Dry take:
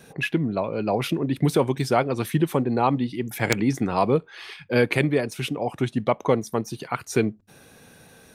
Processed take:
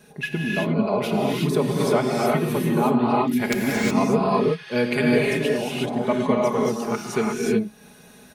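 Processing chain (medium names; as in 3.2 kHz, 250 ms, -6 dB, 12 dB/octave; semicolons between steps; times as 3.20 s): comb 4.8 ms, depth 64%; gated-style reverb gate 390 ms rising, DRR -3.5 dB; trim -4.5 dB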